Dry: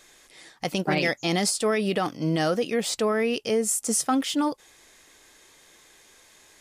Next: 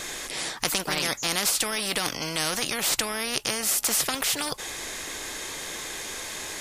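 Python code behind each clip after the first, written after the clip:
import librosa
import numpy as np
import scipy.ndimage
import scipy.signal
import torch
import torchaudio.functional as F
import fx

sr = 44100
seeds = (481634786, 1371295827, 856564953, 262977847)

y = fx.spectral_comp(x, sr, ratio=4.0)
y = y * librosa.db_to_amplitude(7.5)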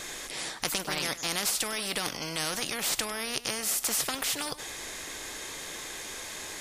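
y = x + 10.0 ** (-15.5 / 20.0) * np.pad(x, (int(100 * sr / 1000.0), 0))[:len(x)]
y = y * librosa.db_to_amplitude(-4.5)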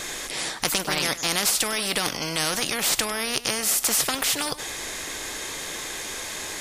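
y = np.clip(10.0 ** (16.0 / 20.0) * x, -1.0, 1.0) / 10.0 ** (16.0 / 20.0)
y = y * librosa.db_to_amplitude(6.5)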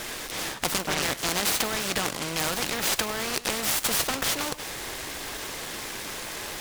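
y = fx.noise_mod_delay(x, sr, seeds[0], noise_hz=1400.0, depth_ms=0.067)
y = y * librosa.db_to_amplitude(-2.0)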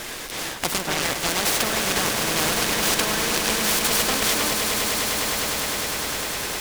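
y = fx.echo_swell(x, sr, ms=102, loudest=8, wet_db=-10.0)
y = y * librosa.db_to_amplitude(2.0)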